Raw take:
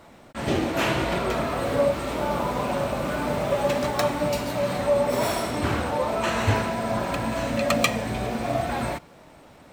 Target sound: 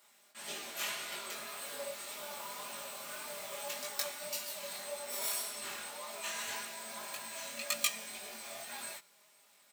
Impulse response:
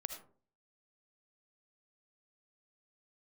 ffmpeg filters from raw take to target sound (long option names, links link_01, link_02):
-af "aderivative,aecho=1:1:4.9:0.65,flanger=delay=18.5:depth=4.9:speed=1.8"